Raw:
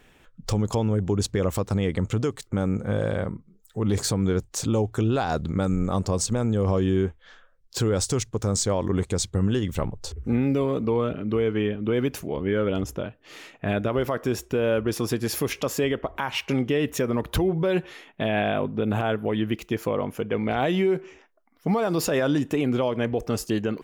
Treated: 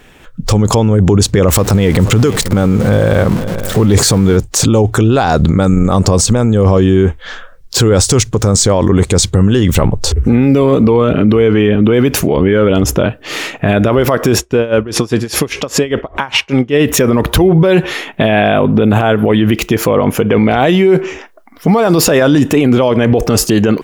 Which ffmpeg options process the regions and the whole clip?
-filter_complex "[0:a]asettb=1/sr,asplit=3[a][b][c];[a]atrim=end=1.484[d];[b]atrim=start=1.48:end=4.37,asetpts=PTS-STARTPTS,afade=t=in:d=0.004:c=qsin,afade=t=out:st=2.886:d=0.004:c=qsin,aeval=exprs='val(0)+0.5*0.0126*sgn(val(0))':c=same,aecho=1:1:481:0.1,atrim=end_sample=127449[e];[c]atrim=start=4.366[f];[d][e]acrossfade=d=0.004:c1=hsin:c2=qsin[g];[g][f]acrossfade=d=0.004:c1=qsin:c2=hsin,asettb=1/sr,asplit=3[h][i][j];[h]atrim=end=14.384[k];[i]atrim=start=14.38:end=16.74,asetpts=PTS-STARTPTS,afade=t=in:d=0.004:c=qsin,afade=t=out:st=2.356:d=0.004:c=qsin,lowpass=8.2k,aeval=exprs='val(0)*pow(10,-24*(0.5-0.5*cos(2*PI*5*n/s))/20)':c=same[l];[j]atrim=start=16.736[m];[k][l]acrossfade=d=0.004:c1=hsin:c2=qsin[n];[n][m]acrossfade=d=0.004:c1=qsin:c2=hsin,dynaudnorm=f=210:g=3:m=10.5dB,alimiter=level_in=14dB:limit=-1dB:release=50:level=0:latency=1,volume=-1dB"

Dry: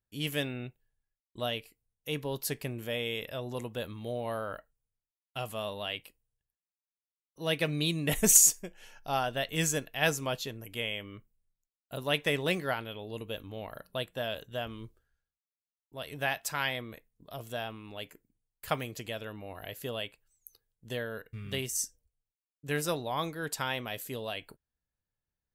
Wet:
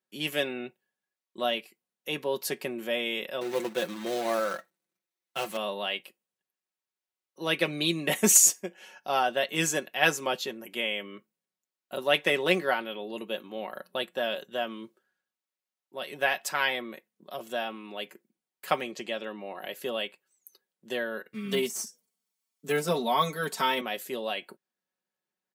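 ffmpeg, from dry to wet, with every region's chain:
-filter_complex "[0:a]asettb=1/sr,asplit=3[a][b][c];[a]atrim=end=3.414[d];[b]atrim=start=3.41:end=5.57,asetpts=PTS-STARTPTS,afade=t=in:d=0.004:c=qsin,afade=t=out:st=2.156:d=0.004:c=qsin,lowshelf=f=99:g=4,acrusher=bits=2:mode=log:mix=0:aa=0.000001,aecho=1:1:5.9:0.62,atrim=end_sample=95256[e];[c]atrim=start=5.566[f];[d][e]acrossfade=d=0.004:c1=hsin:c2=qsin[g];[g][f]acrossfade=d=0.004:c1=qsin:c2=hsin,asettb=1/sr,asplit=3[h][i][j];[h]atrim=end=18.814[k];[i]atrim=start=18.81:end=19.6,asetpts=PTS-STARTPTS,afade=t=in:d=0.004:c=qsin,afade=t=out:st=0.786:d=0.004:c=qsin,lowpass=7.9k,bandreject=f=1.5k:w=24[l];[j]atrim=start=19.596[m];[k][l]acrossfade=d=0.004:c1=hsin:c2=qsin[n];[n][m]acrossfade=d=0.004:c1=qsin:c2=hsin,asettb=1/sr,asplit=3[o][p][q];[o]atrim=end=21.344[r];[p]atrim=start=21.34:end=23.81,asetpts=PTS-STARTPTS,afade=t=in:d=0.004:c=qsin,afade=t=out:st=2.466:d=0.004:c=qsin,bass=f=250:g=5,treble=f=4k:g=9,aecho=1:1:4.5:0.99,atrim=end_sample=108927,deesser=0.8[s];[q]atrim=start=23.806[t];[r][s]acrossfade=d=0.004:c1=hsin:c2=qsin[u];[u][t]acrossfade=d=0.004:c1=qsin:c2=hsin,highpass=f=220:w=0.5412,highpass=f=220:w=1.3066,highshelf=f=5.8k:g=-7,aecho=1:1:5.4:0.57,volume=4.5dB"

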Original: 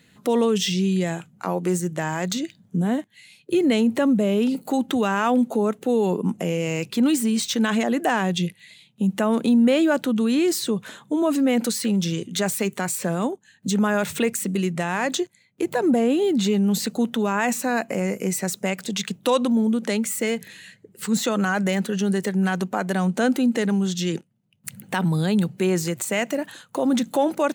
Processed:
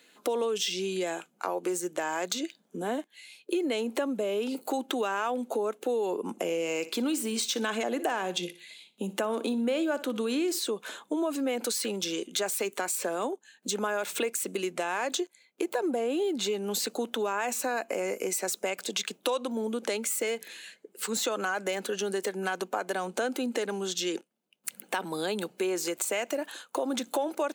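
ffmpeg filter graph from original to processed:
-filter_complex "[0:a]asettb=1/sr,asplit=3[a][b][c];[a]atrim=end=6.314[d];[b]atrim=start=6.31:end=10.59,asetpts=PTS-STARTPTS,afade=t=in:d=0.004:c=qsin,afade=t=out:st=4.276:d=0.004:c=qsin,lowshelf=f=120:g=12,aecho=1:1:60|120|180:0.141|0.0466|0.0154,atrim=end_sample=188748[e];[c]atrim=start=10.586[f];[d][e]acrossfade=d=0.004:c1=hsin:c2=qsin[g];[g][f]acrossfade=d=0.004:c1=qsin:c2=hsin,highpass=f=320:w=0.5412,highpass=f=320:w=1.3066,bandreject=f=1.9k:w=10,acompressor=threshold=-27dB:ratio=4"

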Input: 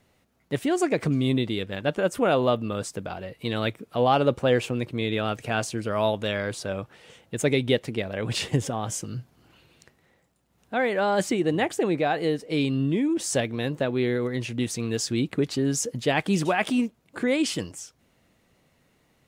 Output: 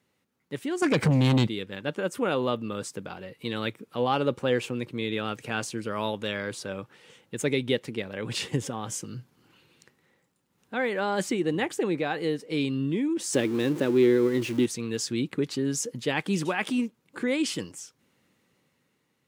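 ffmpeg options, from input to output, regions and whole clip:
-filter_complex "[0:a]asettb=1/sr,asplit=3[a][b][c];[a]atrim=end=0.824[d];[b]atrim=start=0.82:end=1.47,asetpts=PTS-STARTPTS,afade=t=in:d=0.004:c=qsin,afade=t=out:st=0.646:d=0.004:c=qsin,lowshelf=f=150:g=8.5,aecho=1:1:1.3:0.32,atrim=end_sample=28665,aeval=exprs='0.266*sin(PI/2*2*val(0)/0.266)':c=same[e];[c]atrim=start=1.466[f];[d][e]acrossfade=d=0.004:c1=hsin:c2=qsin[g];[g][f]acrossfade=d=0.004:c1=qsin:c2=hsin,asettb=1/sr,asplit=3[h][i][j];[h]atrim=end=13.334[k];[i]atrim=start=13.33:end=14.66,asetpts=PTS-STARTPTS,afade=t=in:d=0.004:c=qsin,afade=t=out:st=1.326:d=0.004:c=qsin,aeval=exprs='val(0)+0.5*0.0211*sgn(val(0))':c=same,equalizer=f=330:w=2.5:g=12.5[l];[j]atrim=start=14.656[m];[k][l]acrossfade=d=0.004:c1=hsin:c2=qsin[n];[n][m]acrossfade=d=0.004:c1=qsin:c2=hsin,highpass=130,equalizer=f=670:t=o:w=0.25:g=-11.5,dynaudnorm=f=140:g=11:m=5dB,volume=-7dB"

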